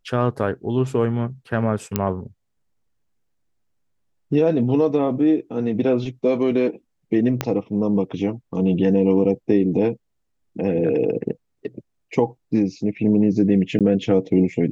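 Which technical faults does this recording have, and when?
0:01.96: click −5 dBFS
0:07.41: click −6 dBFS
0:13.79–0:13.81: drop-out 17 ms

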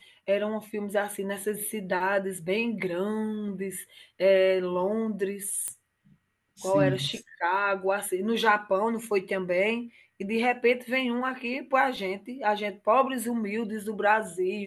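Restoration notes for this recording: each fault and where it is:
0:05.68: click −17 dBFS

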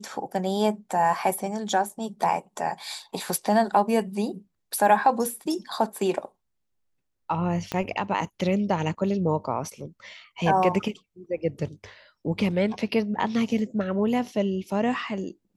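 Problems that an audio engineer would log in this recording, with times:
0:07.72: click −14 dBFS

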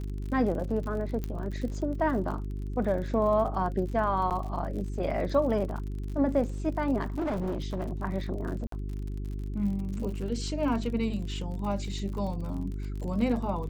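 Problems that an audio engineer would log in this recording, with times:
surface crackle 54 per second −37 dBFS
mains hum 50 Hz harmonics 8 −34 dBFS
0:01.24: click −20 dBFS
0:04.30–0:04.31: drop-out 8.3 ms
0:07.01–0:08.02: clipping −27 dBFS
0:08.67–0:08.72: drop-out 53 ms

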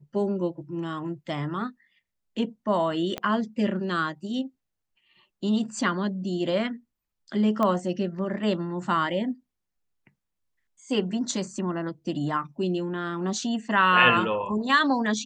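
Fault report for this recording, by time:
0:03.18: click −16 dBFS
0:07.63: click −14 dBFS

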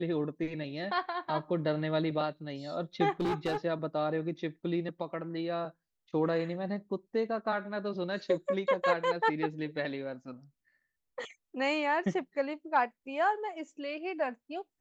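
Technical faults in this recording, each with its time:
0:03.20–0:03.57: clipping −27 dBFS

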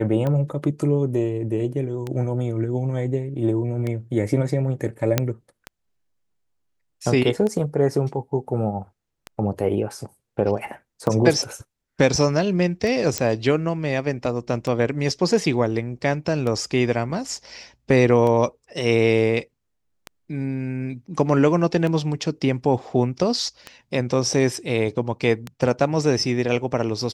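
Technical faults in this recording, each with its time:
scratch tick 33 1/3 rpm −15 dBFS
0:05.18: click −3 dBFS
0:13.18: click −5 dBFS

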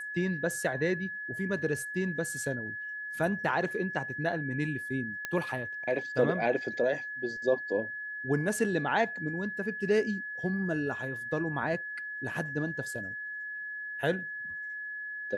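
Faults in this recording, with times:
whistle 1,700 Hz −36 dBFS
0:05.25: click −18 dBFS

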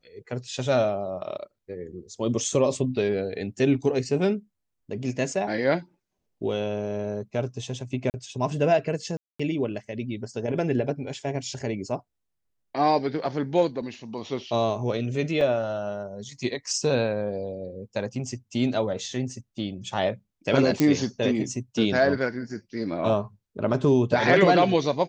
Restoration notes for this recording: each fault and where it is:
0:08.10–0:08.14: drop-out 39 ms
0:09.17–0:09.39: drop-out 225 ms
0:15.41: drop-out 2.9 ms
0:20.80: click −7 dBFS

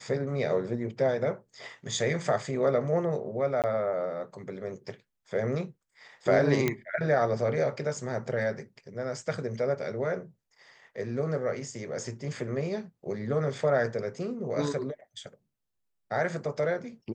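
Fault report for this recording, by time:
0:03.62–0:03.64: drop-out 18 ms
0:06.68: click −12 dBFS

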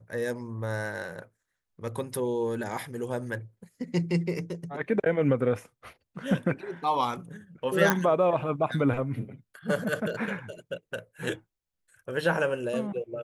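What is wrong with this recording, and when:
0:07.90: click −7 dBFS

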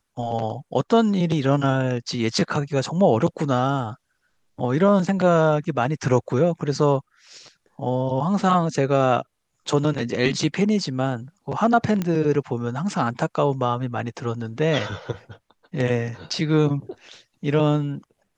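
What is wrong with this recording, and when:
0:12.02: click −12 dBFS

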